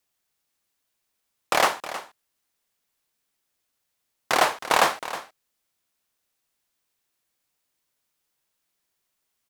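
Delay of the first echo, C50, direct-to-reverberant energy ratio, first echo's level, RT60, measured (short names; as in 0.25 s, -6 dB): 0.316 s, none, none, -13.5 dB, none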